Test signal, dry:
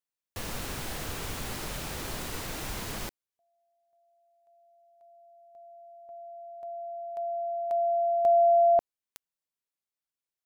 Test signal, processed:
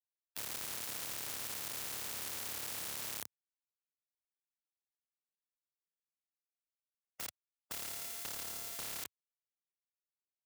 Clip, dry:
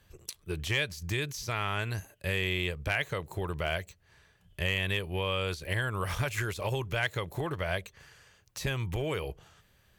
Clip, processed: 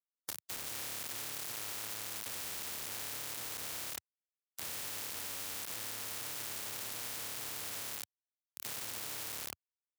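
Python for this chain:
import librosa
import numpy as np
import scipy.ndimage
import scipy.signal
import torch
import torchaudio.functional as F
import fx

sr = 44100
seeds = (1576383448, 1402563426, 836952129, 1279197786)

y = fx.lower_of_two(x, sr, delay_ms=8.8)
y = fx.tilt_shelf(y, sr, db=5.5, hz=1500.0)
y = fx.notch(y, sr, hz=360.0, q=12.0)
y = y + 0.42 * np.pad(y, (int(2.2 * sr / 1000.0), 0))[:len(y)]
y = fx.room_flutter(y, sr, wall_m=4.8, rt60_s=1.2)
y = np.where(np.abs(y) >= 10.0 ** (-28.0 / 20.0), y, 0.0)
y = scipy.signal.sosfilt(scipy.signal.butter(4, 93.0, 'highpass', fs=sr, output='sos'), y)
y = fx.high_shelf(y, sr, hz=5500.0, db=8.0)
y = fx.spectral_comp(y, sr, ratio=10.0)
y = F.gain(torch.from_numpy(y), -8.0).numpy()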